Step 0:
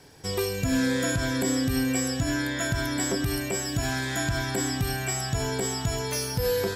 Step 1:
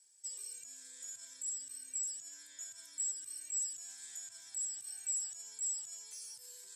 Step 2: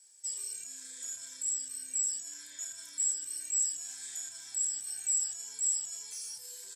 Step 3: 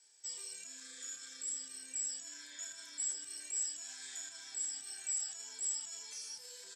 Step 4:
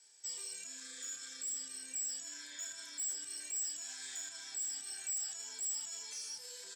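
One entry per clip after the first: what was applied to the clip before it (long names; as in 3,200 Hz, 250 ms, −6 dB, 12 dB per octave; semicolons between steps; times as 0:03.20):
brickwall limiter −22 dBFS, peak gain reduction 7.5 dB; pitch vibrato 13 Hz 21 cents; resonant band-pass 7,900 Hz, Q 7; level +1 dB
double-tracking delay 31 ms −5.5 dB; level +5.5 dB
three-way crossover with the lows and the highs turned down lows −17 dB, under 170 Hz, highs −17 dB, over 6,100 Hz; healed spectral selection 0:00.83–0:01.65, 600–1,300 Hz after; level +2 dB
in parallel at −12 dB: bit reduction 5 bits; on the sum: soft clipping −36 dBFS, distortion −11 dB; level +2.5 dB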